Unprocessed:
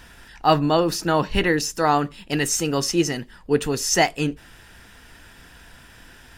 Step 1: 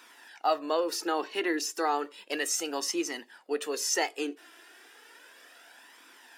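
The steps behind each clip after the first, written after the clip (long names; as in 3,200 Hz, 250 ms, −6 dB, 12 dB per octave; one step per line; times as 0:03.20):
flanger 0.33 Hz, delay 0.8 ms, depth 2.2 ms, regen +31%
downward compressor 2 to 1, threshold −26 dBFS, peak gain reduction 7 dB
Butterworth high-pass 290 Hz 36 dB per octave
level −1 dB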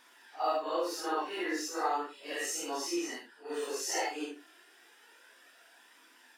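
random phases in long frames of 200 ms
dynamic equaliser 970 Hz, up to +4 dB, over −41 dBFS, Q 1
level −5.5 dB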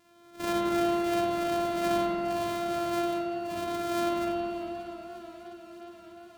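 samples sorted by size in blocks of 128 samples
spring reverb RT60 3.3 s, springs 45/55 ms, chirp 45 ms, DRR −5 dB
feedback echo with a swinging delay time 591 ms, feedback 76%, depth 95 cents, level −20 dB
level −3 dB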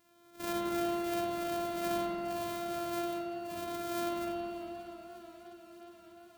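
high-shelf EQ 9,800 Hz +10.5 dB
level −6.5 dB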